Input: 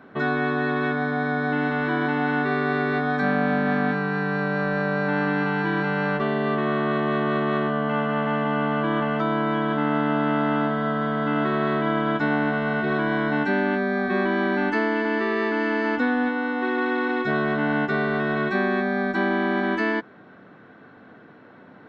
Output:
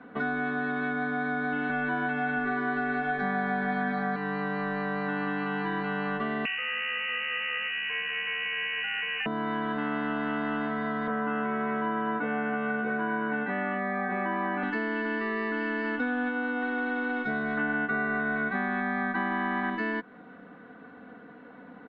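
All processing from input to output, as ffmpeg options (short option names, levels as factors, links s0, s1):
-filter_complex "[0:a]asettb=1/sr,asplit=3[s0][s1][s2];[s0]atrim=end=1.694[s3];[s1]atrim=start=1.69:end=4.16,asetpts=PTS-STARTPTS,afade=t=in:d=0.004:c=qsin,afade=t=out:st=2.466:d=0.004:c=qsin,aecho=1:1:5.3:0.95,atrim=end_sample=108927,aecho=1:1:677:0.501,atrim=end_sample=108927[s4];[s2]atrim=start=4.156[s5];[s3][s4]acrossfade=d=0.004:c1=hsin:c2=qsin[s6];[s6][s5]acrossfade=d=0.004:c1=qsin:c2=hsin,asettb=1/sr,asplit=3[s7][s8][s9];[s7]atrim=end=6.454[s10];[s8]atrim=start=6.45:end=9.26,asetpts=PTS-STARTPTS,afade=t=in:d=0.004:c=qsin,afade=t=out:st=2.806:d=0.004:c=qsin,lowpass=f=2600:t=q:w=0.5098,lowpass=f=2600:t=q:w=0.6013,lowpass=f=2600:t=q:w=0.9,lowpass=f=2600:t=q:w=2.563,afreqshift=-3100,equalizer=f=1700:w=1.6:g=7[s11];[s9]atrim=start=9.256[s12];[s10][s11]acrossfade=d=0.004:c1=hsin:c2=qsin[s13];[s13][s12]acrossfade=d=0.004:c1=qsin:c2=hsin,asettb=1/sr,asplit=3[s14][s15][s16];[s14]atrim=end=11.074[s17];[s15]atrim=start=11.07:end=14.63,asetpts=PTS-STARTPTS,afade=t=in:d=0.004:c=qsin,afade=t=out:st=3.556:d=0.004:c=qsin,highpass=110,equalizer=f=160:t=q:w=4:g=-6,equalizer=f=490:t=q:w=4:g=8,equalizer=f=940:t=q:w=4:g=4,lowpass=f=2700:w=0.5412,lowpass=f=2700:w=1.3066,asplit=2[s18][s19];[s19]adelay=22,volume=0.668[s20];[s18][s20]amix=inputs=2:normalize=0,atrim=end_sample=156996[s21];[s16]atrim=start=14.626[s22];[s17][s21]acrossfade=d=0.004:c1=hsin:c2=qsin[s23];[s23][s22]acrossfade=d=0.004:c1=qsin:c2=hsin,asettb=1/sr,asplit=3[s24][s25][s26];[s24]atrim=end=17.574[s27];[s25]atrim=start=17.57:end=19.7,asetpts=PTS-STARTPTS,afade=t=in:d=0.004:c=qsin,afade=t=out:st=2.126:d=0.004:c=qsin,lowpass=f=4200:w=0.5412,lowpass=f=4200:w=1.3066,equalizer=f=1500:t=o:w=1.7:g=9[s28];[s26]atrim=start=19.696[s29];[s27][s28]acrossfade=d=0.004:c1=hsin:c2=qsin[s30];[s30][s29]acrossfade=d=0.004:c1=qsin:c2=hsin,lowpass=3100,aecho=1:1:4.1:0.72,acrossover=split=140|900[s31][s32][s33];[s31]acompressor=threshold=0.00794:ratio=4[s34];[s32]acompressor=threshold=0.0316:ratio=4[s35];[s33]acompressor=threshold=0.0316:ratio=4[s36];[s34][s35][s36]amix=inputs=3:normalize=0,volume=0.75"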